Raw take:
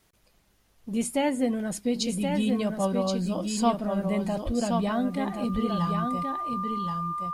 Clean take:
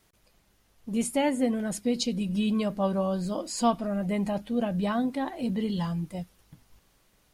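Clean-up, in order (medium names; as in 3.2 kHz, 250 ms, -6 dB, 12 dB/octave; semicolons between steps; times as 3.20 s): band-stop 1.2 kHz, Q 30; 4.45–4.57 s: high-pass 140 Hz 24 dB/octave; inverse comb 1075 ms -5 dB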